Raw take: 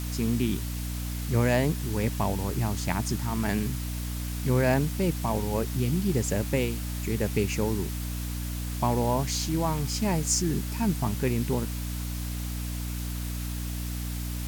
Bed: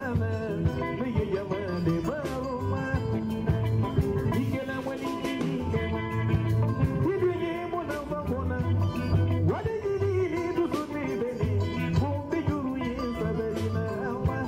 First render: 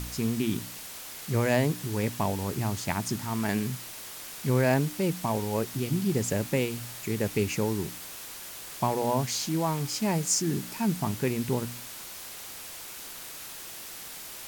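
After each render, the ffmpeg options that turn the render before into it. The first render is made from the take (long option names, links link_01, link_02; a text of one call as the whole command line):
ffmpeg -i in.wav -af "bandreject=frequency=60:width_type=h:width=4,bandreject=frequency=120:width_type=h:width=4,bandreject=frequency=180:width_type=h:width=4,bandreject=frequency=240:width_type=h:width=4,bandreject=frequency=300:width_type=h:width=4" out.wav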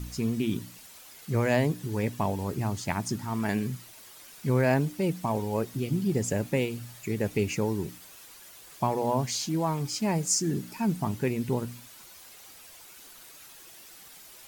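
ffmpeg -i in.wav -af "afftdn=noise_reduction=10:noise_floor=-42" out.wav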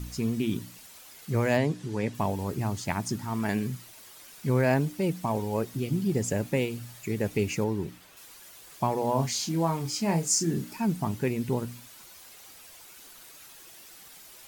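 ffmpeg -i in.wav -filter_complex "[0:a]asplit=3[link_01][link_02][link_03];[link_01]afade=type=out:start_time=1.57:duration=0.02[link_04];[link_02]highpass=110,lowpass=7700,afade=type=in:start_time=1.57:duration=0.02,afade=type=out:start_time=2.13:duration=0.02[link_05];[link_03]afade=type=in:start_time=2.13:duration=0.02[link_06];[link_04][link_05][link_06]amix=inputs=3:normalize=0,asettb=1/sr,asplit=3[link_07][link_08][link_09];[link_07]atrim=end=7.644[link_10];[link_08]atrim=start=7.64:end=8.17,asetpts=PTS-STARTPTS,afade=type=in:duration=0.004:curve=qsin,afade=type=out:start_time=0.526:duration=0.004:curve=qsin,acrossover=split=4000[link_11][link_12];[link_12]acompressor=threshold=-55dB:ratio=4:attack=1:release=60[link_13];[link_11][link_13]amix=inputs=2:normalize=0[link_14];[link_09]atrim=start=8.166[link_15];[link_10][link_14]acrossfade=duration=0.004:curve1=hsin:curve2=qsin[link_16];[link_16][link_15]acrossfade=duration=0.004:curve1=qsin:curve2=hsin,asettb=1/sr,asplit=3[link_17][link_18][link_19];[link_17]atrim=end=9.124[link_20];[link_18]atrim=start=9.12:end=10.76,asetpts=PTS-STARTPTS,afade=type=in:duration=0.004:curve=qsin,afade=type=out:start_time=1.636:duration=0.004:curve=qsin,asplit=2[link_21][link_22];[link_22]adelay=30,volume=-7dB[link_23];[link_21][link_23]amix=inputs=2:normalize=0,atrim=end_sample=72324[link_24];[link_19]atrim=start=10.756[link_25];[link_20][link_24]acrossfade=duration=0.004:curve1=hsin:curve2=qsin[link_26];[link_26][link_25]acrossfade=duration=0.004:curve1=qsin:curve2=hsin" out.wav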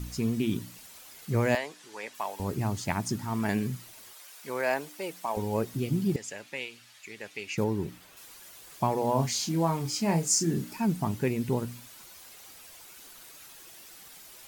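ffmpeg -i in.wav -filter_complex "[0:a]asettb=1/sr,asplit=3[link_01][link_02][link_03];[link_01]atrim=end=1.554[link_04];[link_02]atrim=start=1.55:end=2.4,asetpts=PTS-STARTPTS,afade=type=in:duration=0.004:curve=qsin,afade=type=out:start_time=0.846:duration=0.004:curve=qsin,highpass=820[link_05];[link_03]atrim=start=2.396[link_06];[link_04][link_05]acrossfade=duration=0.004:curve1=hsin:curve2=qsin[link_07];[link_07][link_06]acrossfade=duration=0.004:curve1=qsin:curve2=hsin,asettb=1/sr,asplit=3[link_08][link_09][link_10];[link_08]atrim=end=4.134[link_11];[link_09]atrim=start=4.13:end=5.37,asetpts=PTS-STARTPTS,afade=type=in:duration=0.004:curve=qsin,afade=type=out:start_time=1.236:duration=0.004:curve=qsin,highpass=570[link_12];[link_10]atrim=start=5.366[link_13];[link_11][link_12]acrossfade=duration=0.004:curve1=hsin:curve2=qsin[link_14];[link_14][link_13]acrossfade=duration=0.004:curve1=qsin:curve2=hsin,asettb=1/sr,asplit=3[link_15][link_16][link_17];[link_15]atrim=end=6.164[link_18];[link_16]atrim=start=6.16:end=7.58,asetpts=PTS-STARTPTS,afade=type=in:duration=0.004:curve=qsin,afade=type=out:start_time=1.416:duration=0.004:curve=qsin,bandpass=frequency=2900:width_type=q:width=0.79[link_19];[link_17]atrim=start=7.576[link_20];[link_18][link_19]acrossfade=duration=0.004:curve1=hsin:curve2=qsin[link_21];[link_21][link_20]acrossfade=duration=0.004:curve1=qsin:curve2=hsin" out.wav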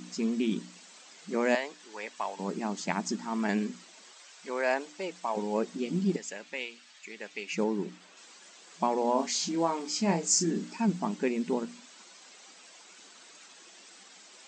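ffmpeg -i in.wav -af "afftfilt=real='re*between(b*sr/4096,170,8300)':imag='im*between(b*sr/4096,170,8300)':win_size=4096:overlap=0.75" out.wav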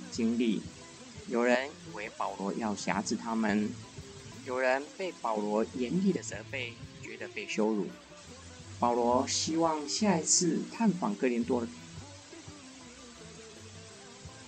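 ffmpeg -i in.wav -i bed.wav -filter_complex "[1:a]volume=-22dB[link_01];[0:a][link_01]amix=inputs=2:normalize=0" out.wav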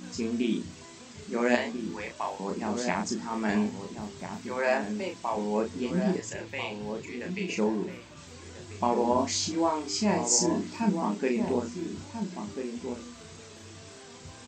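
ffmpeg -i in.wav -filter_complex "[0:a]asplit=2[link_01][link_02];[link_02]adelay=33,volume=-4dB[link_03];[link_01][link_03]amix=inputs=2:normalize=0,asplit=2[link_04][link_05];[link_05]adelay=1341,volume=-7dB,highshelf=frequency=4000:gain=-30.2[link_06];[link_04][link_06]amix=inputs=2:normalize=0" out.wav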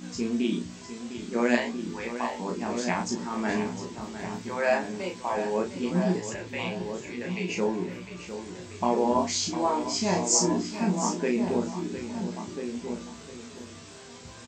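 ffmpeg -i in.wav -filter_complex "[0:a]asplit=2[link_01][link_02];[link_02]adelay=17,volume=-5.5dB[link_03];[link_01][link_03]amix=inputs=2:normalize=0,aecho=1:1:704:0.282" out.wav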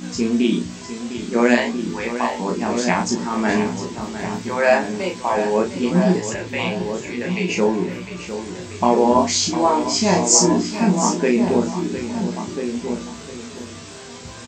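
ffmpeg -i in.wav -af "volume=9dB,alimiter=limit=-1dB:level=0:latency=1" out.wav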